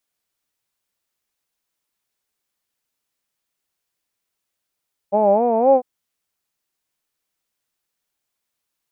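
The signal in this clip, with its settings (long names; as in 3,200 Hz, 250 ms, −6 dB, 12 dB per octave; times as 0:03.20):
vowel by formant synthesis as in hawed, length 0.70 s, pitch 195 Hz, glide +5.5 semitones, vibrato 3.9 Hz, vibrato depth 1.25 semitones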